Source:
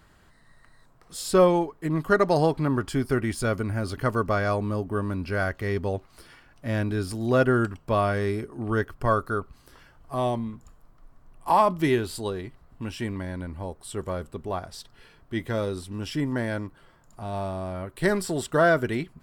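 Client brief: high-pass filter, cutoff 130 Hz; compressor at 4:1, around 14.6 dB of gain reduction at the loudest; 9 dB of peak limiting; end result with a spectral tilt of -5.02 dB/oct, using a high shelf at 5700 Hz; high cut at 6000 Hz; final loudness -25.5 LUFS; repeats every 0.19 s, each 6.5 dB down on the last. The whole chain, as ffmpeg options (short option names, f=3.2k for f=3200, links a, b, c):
-af "highpass=130,lowpass=6k,highshelf=f=5.7k:g=7,acompressor=threshold=-33dB:ratio=4,alimiter=level_in=3.5dB:limit=-24dB:level=0:latency=1,volume=-3.5dB,aecho=1:1:190|380|570|760|950|1140:0.473|0.222|0.105|0.0491|0.0231|0.0109,volume=12.5dB"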